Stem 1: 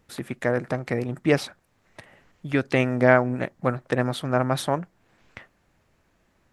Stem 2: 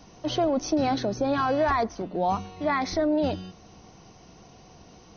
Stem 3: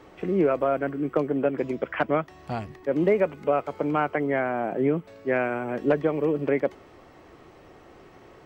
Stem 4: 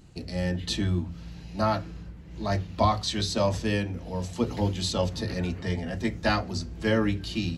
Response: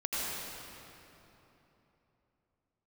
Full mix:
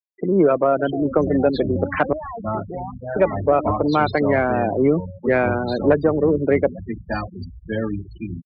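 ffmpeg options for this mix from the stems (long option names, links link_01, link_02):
-filter_complex "[0:a]flanger=delay=17.5:depth=5.7:speed=0.85,asubboost=boost=8.5:cutoff=64,volume=-16dB[link_01];[1:a]acompressor=threshold=-26dB:ratio=8,adelay=550,volume=-8.5dB[link_02];[2:a]volume=-0.5dB,asplit=3[link_03][link_04][link_05];[link_03]atrim=end=2.13,asetpts=PTS-STARTPTS,afade=type=out:start_time=2.126:duration=0.004:curve=hsin[link_06];[link_04]atrim=start=2.13:end=3.16,asetpts=PTS-STARTPTS,volume=0[link_07];[link_05]atrim=start=3.16,asetpts=PTS-STARTPTS,afade=type=in:duration=0.004:curve=hsin[link_08];[link_06][link_07][link_08]concat=n=3:v=0:a=1[link_09];[3:a]adelay=850,volume=-7.5dB[link_10];[link_01][link_02][link_09][link_10]amix=inputs=4:normalize=0,afftfilt=real='re*gte(hypot(re,im),0.0398)':imag='im*gte(hypot(re,im),0.0398)':win_size=1024:overlap=0.75,equalizer=frequency=8200:width=1.5:gain=-14,acontrast=89"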